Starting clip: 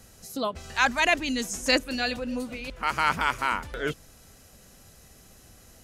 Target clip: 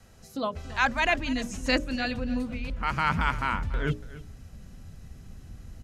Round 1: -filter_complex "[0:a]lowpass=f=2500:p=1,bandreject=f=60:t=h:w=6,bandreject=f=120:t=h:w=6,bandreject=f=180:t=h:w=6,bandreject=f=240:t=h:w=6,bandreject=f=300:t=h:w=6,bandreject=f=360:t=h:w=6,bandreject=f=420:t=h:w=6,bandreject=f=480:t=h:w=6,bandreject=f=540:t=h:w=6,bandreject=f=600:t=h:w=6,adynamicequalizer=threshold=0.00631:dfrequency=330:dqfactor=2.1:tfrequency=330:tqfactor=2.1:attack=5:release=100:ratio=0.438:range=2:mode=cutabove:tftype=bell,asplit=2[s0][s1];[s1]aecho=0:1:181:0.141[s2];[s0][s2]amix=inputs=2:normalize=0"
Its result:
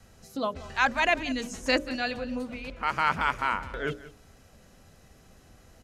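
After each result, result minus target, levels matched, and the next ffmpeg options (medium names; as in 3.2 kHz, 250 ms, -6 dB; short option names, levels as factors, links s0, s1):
echo 105 ms early; 250 Hz band -3.0 dB
-filter_complex "[0:a]lowpass=f=2500:p=1,bandreject=f=60:t=h:w=6,bandreject=f=120:t=h:w=6,bandreject=f=180:t=h:w=6,bandreject=f=240:t=h:w=6,bandreject=f=300:t=h:w=6,bandreject=f=360:t=h:w=6,bandreject=f=420:t=h:w=6,bandreject=f=480:t=h:w=6,bandreject=f=540:t=h:w=6,bandreject=f=600:t=h:w=6,adynamicequalizer=threshold=0.00631:dfrequency=330:dqfactor=2.1:tfrequency=330:tqfactor=2.1:attack=5:release=100:ratio=0.438:range=2:mode=cutabove:tftype=bell,asplit=2[s0][s1];[s1]aecho=0:1:286:0.141[s2];[s0][s2]amix=inputs=2:normalize=0"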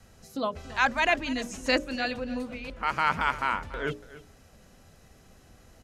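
250 Hz band -3.0 dB
-filter_complex "[0:a]lowpass=f=2500:p=1,asubboost=boost=5:cutoff=230,bandreject=f=60:t=h:w=6,bandreject=f=120:t=h:w=6,bandreject=f=180:t=h:w=6,bandreject=f=240:t=h:w=6,bandreject=f=300:t=h:w=6,bandreject=f=360:t=h:w=6,bandreject=f=420:t=h:w=6,bandreject=f=480:t=h:w=6,bandreject=f=540:t=h:w=6,bandreject=f=600:t=h:w=6,adynamicequalizer=threshold=0.00631:dfrequency=330:dqfactor=2.1:tfrequency=330:tqfactor=2.1:attack=5:release=100:ratio=0.438:range=2:mode=cutabove:tftype=bell,asplit=2[s0][s1];[s1]aecho=0:1:286:0.141[s2];[s0][s2]amix=inputs=2:normalize=0"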